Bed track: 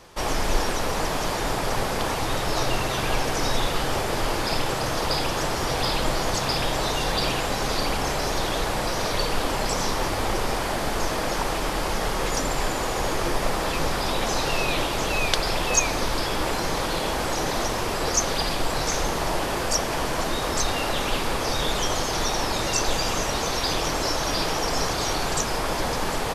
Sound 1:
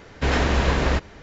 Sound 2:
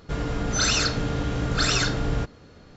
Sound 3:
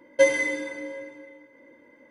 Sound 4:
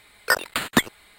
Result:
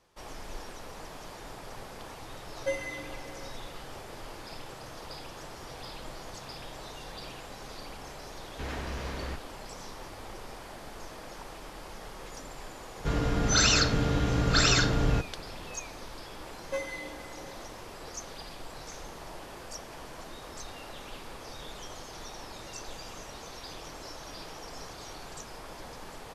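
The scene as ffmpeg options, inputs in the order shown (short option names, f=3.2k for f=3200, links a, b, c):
-filter_complex "[3:a]asplit=2[a][b];[0:a]volume=-18.5dB[c];[1:a]asoftclip=type=hard:threshold=-14.5dB[d];[b]aeval=exprs='clip(val(0),-1,0.15)':c=same[e];[a]atrim=end=2.1,asetpts=PTS-STARTPTS,volume=-13.5dB,afade=t=in:d=0.004:c=hsin,afade=t=out:st=2.096:d=0.004:c=hsin,adelay=2470[f];[d]atrim=end=1.22,asetpts=PTS-STARTPTS,volume=-16dB,afade=t=in:d=0.004:c=hsin,afade=t=out:st=1.216:d=0.004:c=hsin,adelay=8370[g];[2:a]atrim=end=2.76,asetpts=PTS-STARTPTS,volume=-0.5dB,afade=t=in:d=0.004:c=hsin,afade=t=out:st=2.756:d=0.004:c=hsin,adelay=12960[h];[e]atrim=end=2.1,asetpts=PTS-STARTPTS,volume=-14.5dB,afade=t=in:d=0.004:c=hsin,afade=t=out:st=2.096:d=0.004:c=hsin,adelay=16530[i];[c][f][g][h][i]amix=inputs=5:normalize=0"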